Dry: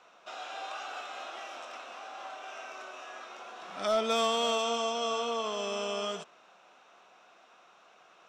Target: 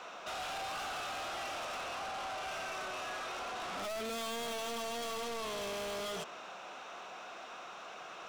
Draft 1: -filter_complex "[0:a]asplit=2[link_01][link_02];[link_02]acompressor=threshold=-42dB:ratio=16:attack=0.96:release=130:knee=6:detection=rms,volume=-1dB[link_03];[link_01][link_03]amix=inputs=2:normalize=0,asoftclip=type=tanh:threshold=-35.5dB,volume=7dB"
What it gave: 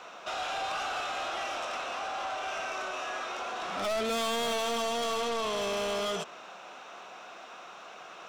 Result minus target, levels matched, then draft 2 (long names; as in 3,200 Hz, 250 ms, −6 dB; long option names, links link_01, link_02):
soft clipping: distortion −4 dB
-filter_complex "[0:a]asplit=2[link_01][link_02];[link_02]acompressor=threshold=-42dB:ratio=16:attack=0.96:release=130:knee=6:detection=rms,volume=-1dB[link_03];[link_01][link_03]amix=inputs=2:normalize=0,asoftclip=type=tanh:threshold=-45dB,volume=7dB"